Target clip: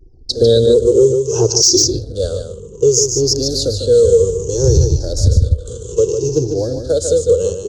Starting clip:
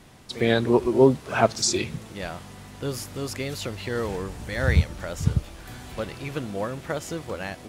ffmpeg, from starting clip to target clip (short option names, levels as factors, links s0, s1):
-filter_complex "[0:a]afftfilt=real='re*pow(10,15/40*sin(2*PI*(0.74*log(max(b,1)*sr/1024/100)/log(2)-(-0.62)*(pts-256)/sr)))':imag='im*pow(10,15/40*sin(2*PI*(0.74*log(max(b,1)*sr/1024/100)/log(2)-(-0.62)*(pts-256)/sr)))':win_size=1024:overlap=0.75,anlmdn=0.631,firequalizer=gain_entry='entry(100,0);entry(200,-16);entry(460,10);entry(680,-20);entry(2200,-30);entry(4100,-4);entry(6500,11);entry(11000,-18)':delay=0.05:min_phase=1,acrossover=split=130|3000[s0][s1][s2];[s1]acompressor=threshold=0.0891:ratio=10[s3];[s0][s3][s2]amix=inputs=3:normalize=0,asoftclip=type=hard:threshold=0.447,asuperstop=centerf=2100:order=20:qfactor=2.3,aecho=1:1:148:0.447,alimiter=level_in=5.31:limit=0.891:release=50:level=0:latency=1,volume=0.891"